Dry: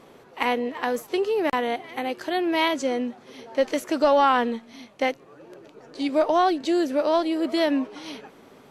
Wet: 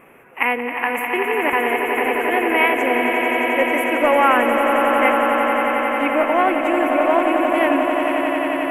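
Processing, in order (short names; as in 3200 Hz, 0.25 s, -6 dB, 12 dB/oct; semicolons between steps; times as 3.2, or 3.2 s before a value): EQ curve 440 Hz 0 dB, 1000 Hz +3 dB, 2600 Hz +11 dB, 4200 Hz -29 dB, 11000 Hz +8 dB; swelling echo 89 ms, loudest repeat 8, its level -8.5 dB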